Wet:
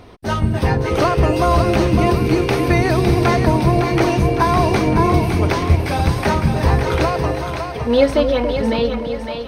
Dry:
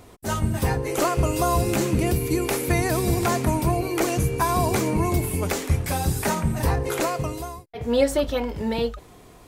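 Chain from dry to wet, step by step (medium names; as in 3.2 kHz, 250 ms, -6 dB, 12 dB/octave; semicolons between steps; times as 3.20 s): Savitzky-Golay filter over 15 samples; two-band feedback delay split 610 Hz, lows 282 ms, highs 558 ms, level -6 dB; trim +6 dB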